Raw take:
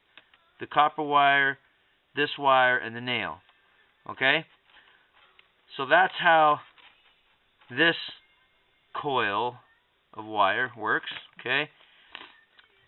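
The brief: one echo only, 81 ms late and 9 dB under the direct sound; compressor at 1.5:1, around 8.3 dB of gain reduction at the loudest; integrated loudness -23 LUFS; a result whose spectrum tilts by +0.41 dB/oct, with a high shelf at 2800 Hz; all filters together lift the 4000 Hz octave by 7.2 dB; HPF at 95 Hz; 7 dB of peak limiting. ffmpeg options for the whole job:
-af "highpass=95,highshelf=f=2.8k:g=7.5,equalizer=f=4k:t=o:g=4.5,acompressor=threshold=-37dB:ratio=1.5,alimiter=limit=-17dB:level=0:latency=1,aecho=1:1:81:0.355,volume=8dB"

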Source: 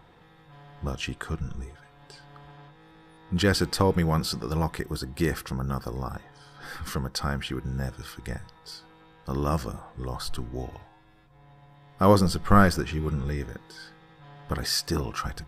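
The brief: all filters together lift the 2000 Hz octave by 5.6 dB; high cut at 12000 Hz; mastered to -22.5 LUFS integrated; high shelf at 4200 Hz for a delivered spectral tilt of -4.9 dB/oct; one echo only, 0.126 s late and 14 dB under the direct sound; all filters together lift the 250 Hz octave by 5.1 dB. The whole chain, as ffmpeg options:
-af "lowpass=12k,equalizer=f=250:t=o:g=7.5,equalizer=f=2k:t=o:g=7,highshelf=f=4.2k:g=3,aecho=1:1:126:0.2,volume=1.5dB"

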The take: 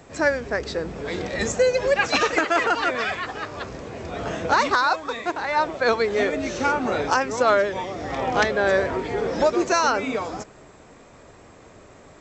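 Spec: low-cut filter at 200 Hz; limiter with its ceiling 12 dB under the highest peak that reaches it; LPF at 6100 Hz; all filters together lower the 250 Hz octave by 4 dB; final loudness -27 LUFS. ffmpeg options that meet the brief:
-af "highpass=200,lowpass=6.1k,equalizer=f=250:t=o:g=-4,volume=2dB,alimiter=limit=-17dB:level=0:latency=1"

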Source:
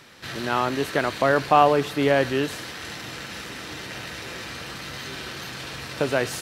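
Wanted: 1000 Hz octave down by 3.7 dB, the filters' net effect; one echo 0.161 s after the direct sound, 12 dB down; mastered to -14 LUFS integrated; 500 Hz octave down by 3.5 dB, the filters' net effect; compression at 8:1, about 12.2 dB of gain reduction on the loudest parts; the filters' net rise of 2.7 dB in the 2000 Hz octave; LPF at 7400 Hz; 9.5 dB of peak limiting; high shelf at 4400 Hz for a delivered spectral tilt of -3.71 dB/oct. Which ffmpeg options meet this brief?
-af "lowpass=7.4k,equalizer=f=500:t=o:g=-3,equalizer=f=1k:t=o:g=-5.5,equalizer=f=2k:t=o:g=6.5,highshelf=f=4.4k:g=-4.5,acompressor=threshold=-28dB:ratio=8,alimiter=limit=-22.5dB:level=0:latency=1,aecho=1:1:161:0.251,volume=19.5dB"

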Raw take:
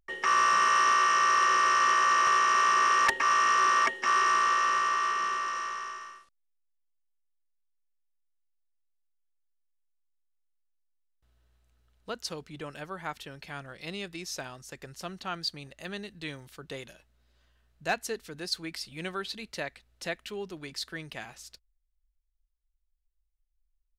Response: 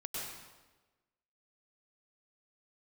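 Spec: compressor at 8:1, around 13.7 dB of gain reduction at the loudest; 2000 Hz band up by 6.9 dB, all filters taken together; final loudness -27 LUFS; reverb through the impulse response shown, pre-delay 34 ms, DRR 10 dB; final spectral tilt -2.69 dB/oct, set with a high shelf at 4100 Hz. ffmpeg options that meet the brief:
-filter_complex "[0:a]equalizer=f=2k:t=o:g=9,highshelf=f=4.1k:g=-5,acompressor=threshold=-29dB:ratio=8,asplit=2[a][b];[1:a]atrim=start_sample=2205,adelay=34[c];[b][c]afir=irnorm=-1:irlink=0,volume=-11dB[d];[a][d]amix=inputs=2:normalize=0,volume=7dB"

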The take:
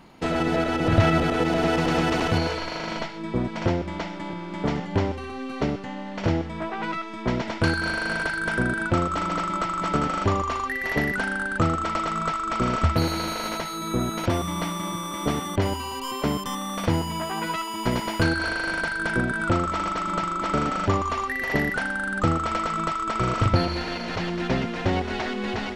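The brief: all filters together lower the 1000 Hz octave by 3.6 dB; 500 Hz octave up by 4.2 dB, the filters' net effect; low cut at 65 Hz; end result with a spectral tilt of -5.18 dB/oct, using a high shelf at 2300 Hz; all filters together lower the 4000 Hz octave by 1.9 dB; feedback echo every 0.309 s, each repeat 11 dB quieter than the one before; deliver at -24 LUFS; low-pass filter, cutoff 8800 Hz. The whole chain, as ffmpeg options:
-af "highpass=65,lowpass=8.8k,equalizer=f=500:t=o:g=7.5,equalizer=f=1k:t=o:g=-8.5,highshelf=f=2.3k:g=6,equalizer=f=4k:t=o:g=-7.5,aecho=1:1:309|618|927:0.282|0.0789|0.0221,volume=1dB"

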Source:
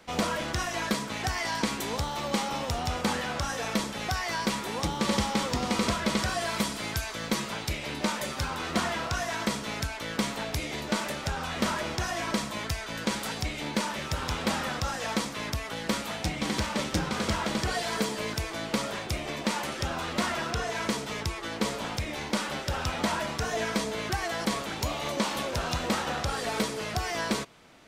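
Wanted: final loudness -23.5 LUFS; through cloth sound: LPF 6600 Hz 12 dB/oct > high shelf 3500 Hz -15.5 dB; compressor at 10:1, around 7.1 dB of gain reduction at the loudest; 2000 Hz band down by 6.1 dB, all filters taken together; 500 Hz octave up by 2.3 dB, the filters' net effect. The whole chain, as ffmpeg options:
-af "equalizer=f=500:t=o:g=3.5,equalizer=f=2k:t=o:g=-3.5,acompressor=threshold=-29dB:ratio=10,lowpass=6.6k,highshelf=f=3.5k:g=-15.5,volume=12.5dB"

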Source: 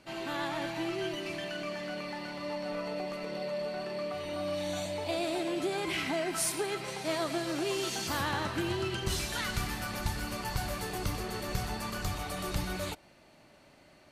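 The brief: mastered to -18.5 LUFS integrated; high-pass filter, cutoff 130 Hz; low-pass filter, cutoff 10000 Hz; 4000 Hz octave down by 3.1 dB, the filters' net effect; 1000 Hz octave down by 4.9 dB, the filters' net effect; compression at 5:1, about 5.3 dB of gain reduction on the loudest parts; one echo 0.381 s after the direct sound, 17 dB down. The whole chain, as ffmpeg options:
-af "highpass=130,lowpass=10k,equalizer=f=1k:t=o:g=-6.5,equalizer=f=4k:t=o:g=-3.5,acompressor=threshold=-36dB:ratio=5,aecho=1:1:381:0.141,volume=21.5dB"

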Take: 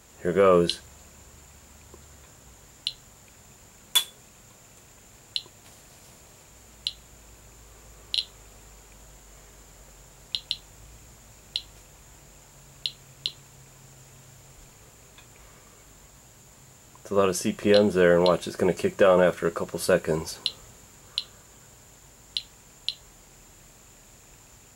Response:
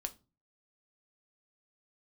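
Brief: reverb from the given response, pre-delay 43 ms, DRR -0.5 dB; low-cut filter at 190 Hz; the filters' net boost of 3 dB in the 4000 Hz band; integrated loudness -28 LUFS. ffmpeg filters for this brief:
-filter_complex "[0:a]highpass=190,equalizer=f=4k:t=o:g=3.5,asplit=2[a][b];[1:a]atrim=start_sample=2205,adelay=43[c];[b][c]afir=irnorm=-1:irlink=0,volume=1.5dB[d];[a][d]amix=inputs=2:normalize=0,volume=-5.5dB"

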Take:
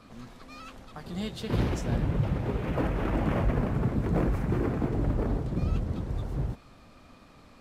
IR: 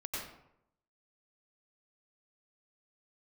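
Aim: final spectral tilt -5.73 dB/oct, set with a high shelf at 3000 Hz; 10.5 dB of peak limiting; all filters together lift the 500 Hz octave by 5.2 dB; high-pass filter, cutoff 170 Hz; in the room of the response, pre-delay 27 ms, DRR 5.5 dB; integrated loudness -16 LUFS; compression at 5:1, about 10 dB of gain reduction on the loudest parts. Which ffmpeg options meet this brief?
-filter_complex "[0:a]highpass=170,equalizer=f=500:t=o:g=6.5,highshelf=f=3k:g=4,acompressor=threshold=-34dB:ratio=5,alimiter=level_in=10dB:limit=-24dB:level=0:latency=1,volume=-10dB,asplit=2[a][b];[1:a]atrim=start_sample=2205,adelay=27[c];[b][c]afir=irnorm=-1:irlink=0,volume=-7.5dB[d];[a][d]amix=inputs=2:normalize=0,volume=26dB"

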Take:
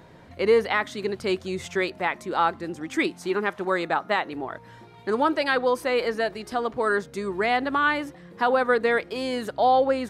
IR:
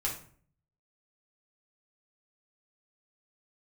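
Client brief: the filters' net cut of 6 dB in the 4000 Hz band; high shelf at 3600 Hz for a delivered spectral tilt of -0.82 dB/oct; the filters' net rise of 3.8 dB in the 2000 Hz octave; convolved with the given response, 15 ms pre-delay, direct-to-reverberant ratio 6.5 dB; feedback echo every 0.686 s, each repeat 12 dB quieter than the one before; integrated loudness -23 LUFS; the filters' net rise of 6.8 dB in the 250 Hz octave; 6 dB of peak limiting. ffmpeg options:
-filter_complex "[0:a]equalizer=f=250:t=o:g=8.5,equalizer=f=2k:t=o:g=8,highshelf=f=3.6k:g=-7.5,equalizer=f=4k:t=o:g=-7.5,alimiter=limit=-13.5dB:level=0:latency=1,aecho=1:1:686|1372|2058:0.251|0.0628|0.0157,asplit=2[a][b];[1:a]atrim=start_sample=2205,adelay=15[c];[b][c]afir=irnorm=-1:irlink=0,volume=-11dB[d];[a][d]amix=inputs=2:normalize=0,volume=0.5dB"

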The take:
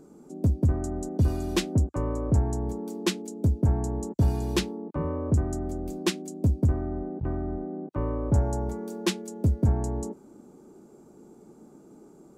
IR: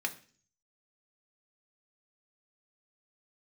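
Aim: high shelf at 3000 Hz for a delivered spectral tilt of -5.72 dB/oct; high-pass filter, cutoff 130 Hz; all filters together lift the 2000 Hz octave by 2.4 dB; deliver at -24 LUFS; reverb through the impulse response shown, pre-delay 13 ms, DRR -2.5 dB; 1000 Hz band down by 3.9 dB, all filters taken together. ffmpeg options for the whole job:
-filter_complex "[0:a]highpass=130,equalizer=f=1k:t=o:g=-6,equalizer=f=2k:t=o:g=7,highshelf=f=3k:g=-5.5,asplit=2[a][b];[1:a]atrim=start_sample=2205,adelay=13[c];[b][c]afir=irnorm=-1:irlink=0,volume=-1.5dB[d];[a][d]amix=inputs=2:normalize=0,volume=5dB"

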